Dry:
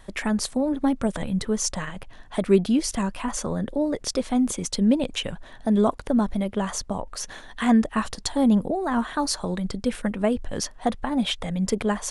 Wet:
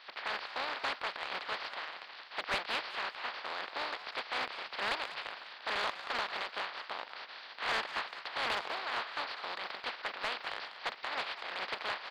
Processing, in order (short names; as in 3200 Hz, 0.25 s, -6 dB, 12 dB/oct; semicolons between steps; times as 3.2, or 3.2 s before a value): spectral contrast lowered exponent 0.16; HPF 830 Hz 12 dB/oct; de-esser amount 85%; elliptic low-pass 4600 Hz, stop band 40 dB; soft clip -25.5 dBFS, distortion -17 dB; frequency-shifting echo 0.197 s, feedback 32%, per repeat +140 Hz, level -12.5 dB